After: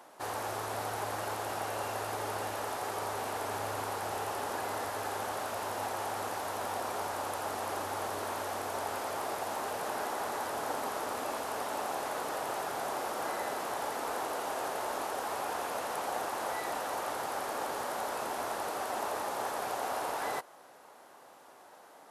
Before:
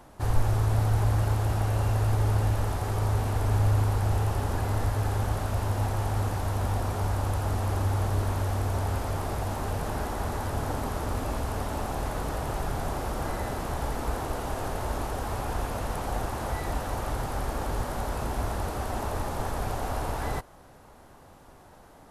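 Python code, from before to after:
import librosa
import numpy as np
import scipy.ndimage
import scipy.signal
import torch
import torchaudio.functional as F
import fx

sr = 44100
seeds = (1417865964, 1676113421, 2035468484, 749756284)

y = scipy.signal.sosfilt(scipy.signal.butter(2, 450.0, 'highpass', fs=sr, output='sos'), x)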